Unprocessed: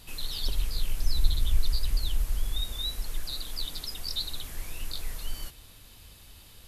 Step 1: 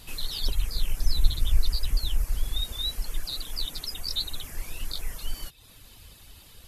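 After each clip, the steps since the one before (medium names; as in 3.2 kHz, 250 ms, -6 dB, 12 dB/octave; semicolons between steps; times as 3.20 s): reverb removal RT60 0.64 s; trim +3 dB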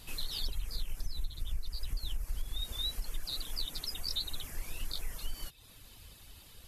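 compression 12:1, threshold -25 dBFS, peak gain reduction 16 dB; trim -4 dB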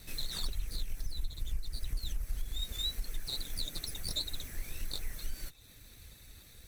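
comb filter that takes the minimum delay 0.51 ms; trim +1 dB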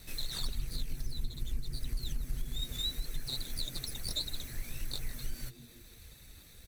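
frequency-shifting echo 156 ms, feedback 43%, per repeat +110 Hz, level -17 dB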